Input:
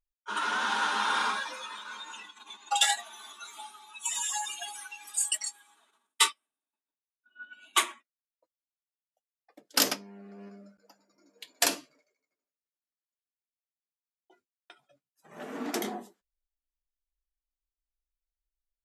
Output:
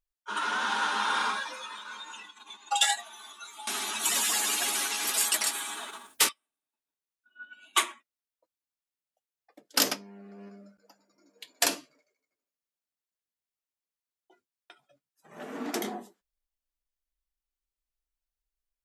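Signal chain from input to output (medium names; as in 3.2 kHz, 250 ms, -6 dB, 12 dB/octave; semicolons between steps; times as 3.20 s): 3.67–6.29 s: spectrum-flattening compressor 4:1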